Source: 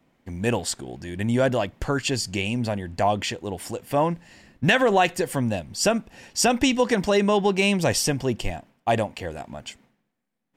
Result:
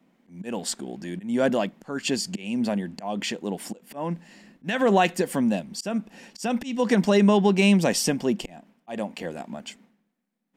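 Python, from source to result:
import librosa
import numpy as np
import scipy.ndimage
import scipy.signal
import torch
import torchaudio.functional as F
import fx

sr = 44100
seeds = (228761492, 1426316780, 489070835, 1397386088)

y = fx.auto_swell(x, sr, attack_ms=260.0)
y = fx.low_shelf_res(y, sr, hz=140.0, db=-11.0, q=3.0)
y = y * 10.0 ** (-1.5 / 20.0)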